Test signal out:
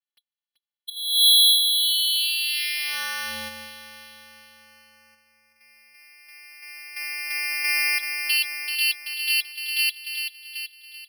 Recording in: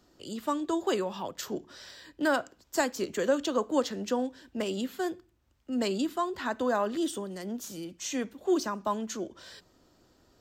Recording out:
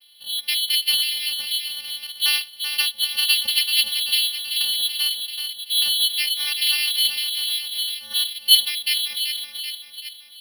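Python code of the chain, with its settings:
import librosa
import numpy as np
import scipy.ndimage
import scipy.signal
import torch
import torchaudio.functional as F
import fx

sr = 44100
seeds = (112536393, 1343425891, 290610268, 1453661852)

p1 = fx.high_shelf(x, sr, hz=2300.0, db=-12.0)
p2 = p1 + fx.echo_feedback(p1, sr, ms=384, feedback_pct=55, wet_db=-8.5, dry=0)
p3 = fx.vocoder(p2, sr, bands=8, carrier='square', carrier_hz=156.0)
p4 = fx.peak_eq(p3, sr, hz=1800.0, db=4.5, octaves=0.45)
p5 = fx.level_steps(p4, sr, step_db=23)
p6 = p4 + (p5 * 10.0 ** (-2.0 / 20.0))
p7 = fx.freq_invert(p6, sr, carrier_hz=3500)
p8 = np.repeat(p7[::6], 6)[:len(p7)]
y = p8 * 10.0 ** (8.0 / 20.0)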